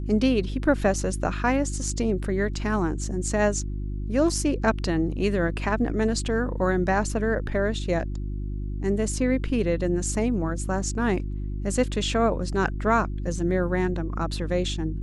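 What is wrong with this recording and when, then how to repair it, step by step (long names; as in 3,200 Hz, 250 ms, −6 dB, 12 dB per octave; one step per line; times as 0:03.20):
mains hum 50 Hz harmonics 7 −30 dBFS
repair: hum removal 50 Hz, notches 7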